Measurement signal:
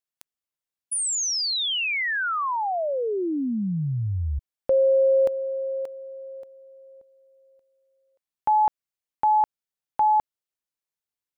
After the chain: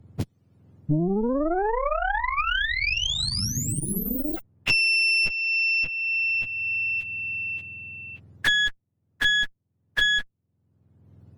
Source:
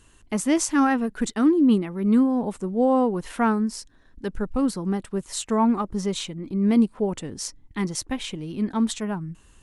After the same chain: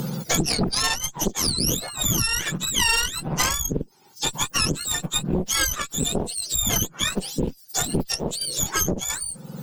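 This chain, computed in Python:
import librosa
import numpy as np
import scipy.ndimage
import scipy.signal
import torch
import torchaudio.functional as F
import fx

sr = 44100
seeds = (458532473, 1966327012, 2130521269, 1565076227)

y = fx.octave_mirror(x, sr, pivot_hz=1200.0)
y = fx.cheby_harmonics(y, sr, harmonics=(3, 5, 7, 8), levels_db=(-14, -18, -36, -12), full_scale_db=-5.0)
y = fx.band_squash(y, sr, depth_pct=100)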